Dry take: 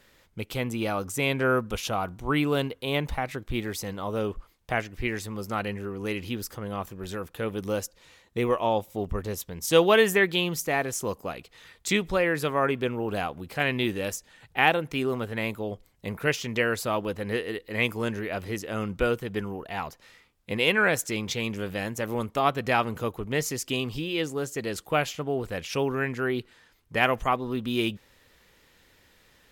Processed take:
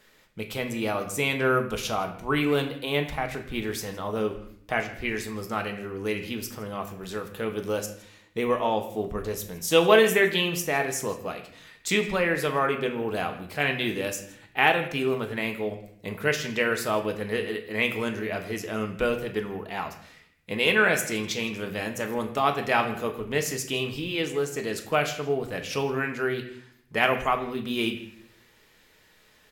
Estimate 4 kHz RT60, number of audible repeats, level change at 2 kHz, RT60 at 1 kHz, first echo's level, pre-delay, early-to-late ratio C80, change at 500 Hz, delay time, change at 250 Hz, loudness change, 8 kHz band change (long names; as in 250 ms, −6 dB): 0.55 s, 1, +1.5 dB, 0.60 s, −21.0 dB, 5 ms, 12.5 dB, +1.0 dB, 162 ms, −0.5 dB, +1.0 dB, +1.0 dB